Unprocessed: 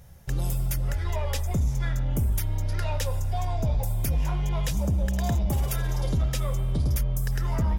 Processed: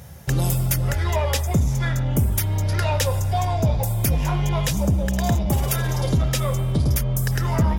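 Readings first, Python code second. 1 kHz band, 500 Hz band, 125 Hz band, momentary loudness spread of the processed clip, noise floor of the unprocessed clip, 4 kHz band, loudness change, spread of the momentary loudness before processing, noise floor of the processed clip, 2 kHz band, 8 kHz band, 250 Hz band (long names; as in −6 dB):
+8.5 dB, +8.5 dB, +6.5 dB, 2 LU, −28 dBFS, +8.5 dB, +6.0 dB, 3 LU, −23 dBFS, +8.5 dB, +8.5 dB, +8.0 dB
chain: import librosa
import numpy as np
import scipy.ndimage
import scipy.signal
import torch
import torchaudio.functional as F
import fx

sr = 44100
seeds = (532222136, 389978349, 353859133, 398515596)

y = scipy.signal.sosfilt(scipy.signal.butter(2, 79.0, 'highpass', fs=sr, output='sos'), x)
y = fx.rider(y, sr, range_db=3, speed_s=0.5)
y = F.gain(torch.from_numpy(y), 8.5).numpy()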